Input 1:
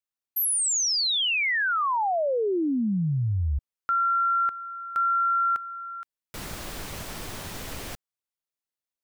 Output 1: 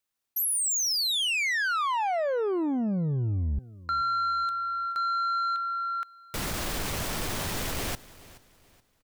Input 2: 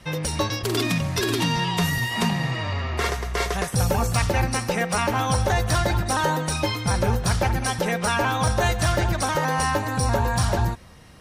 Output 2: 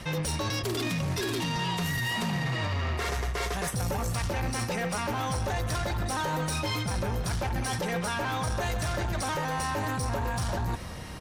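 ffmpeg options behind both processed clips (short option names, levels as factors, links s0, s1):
-af "areverse,acompressor=threshold=0.0355:ratio=16:attack=0.39:release=95:detection=rms,areverse,aeval=exprs='0.0531*sin(PI/2*1.58*val(0)/0.0531)':c=same,aecho=1:1:426|852|1278:0.106|0.035|0.0115"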